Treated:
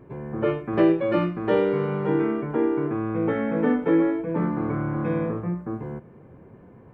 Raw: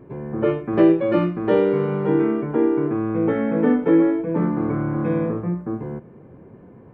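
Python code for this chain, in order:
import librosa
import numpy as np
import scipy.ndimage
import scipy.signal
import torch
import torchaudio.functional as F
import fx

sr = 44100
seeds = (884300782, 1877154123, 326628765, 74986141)

y = fx.peak_eq(x, sr, hz=290.0, db=-4.5, octaves=2.4)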